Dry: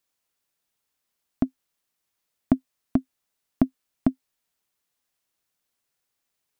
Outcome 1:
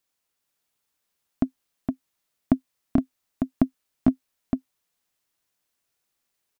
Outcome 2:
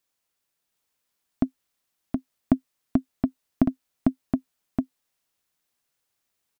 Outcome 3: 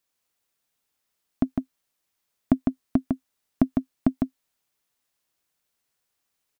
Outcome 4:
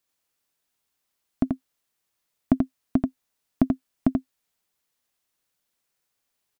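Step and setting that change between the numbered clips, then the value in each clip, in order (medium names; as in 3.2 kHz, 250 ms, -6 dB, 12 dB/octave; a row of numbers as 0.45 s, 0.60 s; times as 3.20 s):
delay, time: 465 ms, 721 ms, 154 ms, 85 ms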